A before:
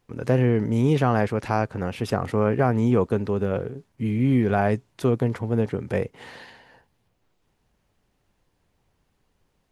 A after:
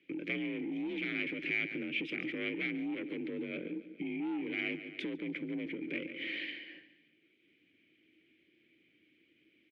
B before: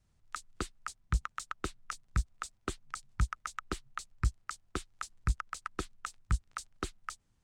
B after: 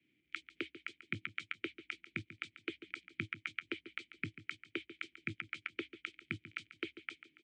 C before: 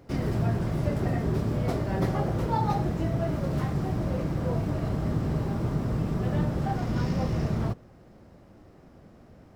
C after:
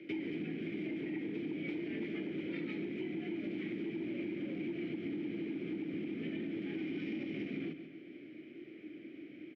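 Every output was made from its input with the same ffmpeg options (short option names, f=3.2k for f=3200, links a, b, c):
-filter_complex "[0:a]aeval=exprs='0.447*sin(PI/2*3.16*val(0)/0.447)':c=same,asplit=3[a][b][c];[a]bandpass=f=270:t=q:w=8,volume=0dB[d];[b]bandpass=f=2.29k:t=q:w=8,volume=-6dB[e];[c]bandpass=f=3.01k:t=q:w=8,volume=-9dB[f];[d][e][f]amix=inputs=3:normalize=0,highshelf=f=4.2k:g=-11,aecho=1:1:141|282|423|564:0.188|0.0735|0.0287|0.0112,asoftclip=type=tanh:threshold=-16dB,alimiter=level_in=3.5dB:limit=-24dB:level=0:latency=1:release=449,volume=-3.5dB,acompressor=threshold=-38dB:ratio=2,afreqshift=48,equalizer=f=2.5k:t=o:w=1.1:g=12.5,volume=-1dB"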